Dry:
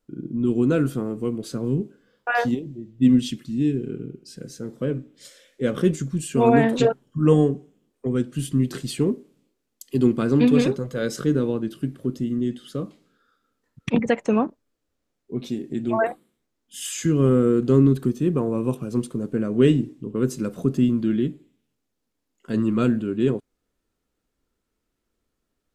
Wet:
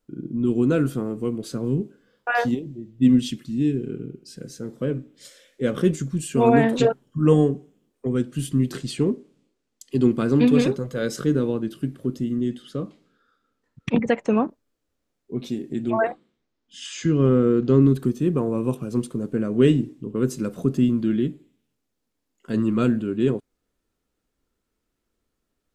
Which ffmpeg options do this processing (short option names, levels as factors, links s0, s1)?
-filter_complex "[0:a]asettb=1/sr,asplit=3[s0][s1][s2];[s0]atrim=end=8.774[s3];[s1]atrim=start=8.77:end=10.11,asetpts=PTS-STARTPTS,afade=t=in:d=0.004:c=qsin,afade=t=out:st=1.336:d=0.004:c=qsin,lowpass=8400[s4];[s2]atrim=start=10.106[s5];[s3][s4]acrossfade=d=0.004:c1=hsin:c2=qsin[s6];[s6][s5]acrossfade=d=0.004:c1=qsin:c2=hsin,asettb=1/sr,asplit=3[s7][s8][s9];[s7]atrim=end=12.624[s10];[s8]atrim=start=12.62:end=14.45,asetpts=PTS-STARTPTS,afade=t=in:d=0.004:c=qsin,afade=t=out:st=1.826:d=0.004:c=qsin,highshelf=f=9400:g=-12[s11];[s9]atrim=start=14.446[s12];[s10][s11]acrossfade=d=0.004:c1=hsin:c2=qsin[s13];[s13][s12]acrossfade=d=0.004:c1=qsin:c2=hsin,asettb=1/sr,asplit=3[s14][s15][s16];[s14]atrim=end=15.904[s17];[s15]atrim=start=15.9:end=17.82,asetpts=PTS-STARTPTS,afade=t=in:d=0.004:c=qsin,afade=t=out:st=1.916:d=0.004:c=qsin,lowpass=f=5900:w=0.5412,lowpass=f=5900:w=1.3066[s18];[s16]atrim=start=17.816[s19];[s17][s18]acrossfade=d=0.004:c1=hsin:c2=qsin[s20];[s20][s19]acrossfade=d=0.004:c1=qsin:c2=hsin"